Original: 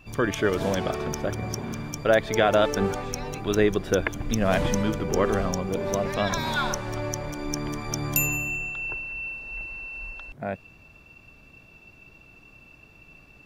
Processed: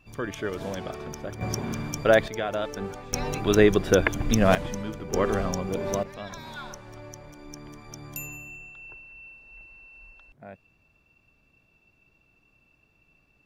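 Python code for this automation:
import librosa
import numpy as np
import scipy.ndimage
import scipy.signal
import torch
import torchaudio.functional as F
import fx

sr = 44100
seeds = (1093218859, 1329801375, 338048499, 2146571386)

y = fx.gain(x, sr, db=fx.steps((0.0, -7.5), (1.41, 1.5), (2.28, -9.0), (3.13, 3.5), (4.55, -8.5), (5.13, -1.5), (6.03, -13.0)))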